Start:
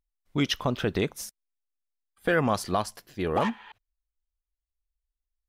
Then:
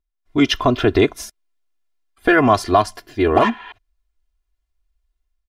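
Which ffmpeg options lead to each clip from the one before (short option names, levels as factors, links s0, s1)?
-af "dynaudnorm=f=140:g=5:m=3.55,lowpass=f=3400:p=1,aecho=1:1:2.9:0.84"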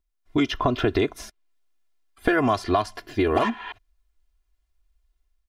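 -filter_complex "[0:a]acrossover=split=1700|4200[s0][s1][s2];[s0]acompressor=threshold=0.0794:ratio=4[s3];[s1]acompressor=threshold=0.0141:ratio=4[s4];[s2]acompressor=threshold=0.00398:ratio=4[s5];[s3][s4][s5]amix=inputs=3:normalize=0,volume=1.26"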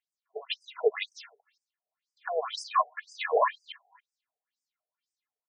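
-filter_complex "[0:a]aphaser=in_gain=1:out_gain=1:delay=2.4:decay=0.51:speed=0.48:type=sinusoidal,asplit=2[s0][s1];[s1]adelay=280,highpass=300,lowpass=3400,asoftclip=type=hard:threshold=0.266,volume=0.0794[s2];[s0][s2]amix=inputs=2:normalize=0,afftfilt=real='re*between(b*sr/1024,580*pow(6800/580,0.5+0.5*sin(2*PI*2*pts/sr))/1.41,580*pow(6800/580,0.5+0.5*sin(2*PI*2*pts/sr))*1.41)':imag='im*between(b*sr/1024,580*pow(6800/580,0.5+0.5*sin(2*PI*2*pts/sr))/1.41,580*pow(6800/580,0.5+0.5*sin(2*PI*2*pts/sr))*1.41)':win_size=1024:overlap=0.75"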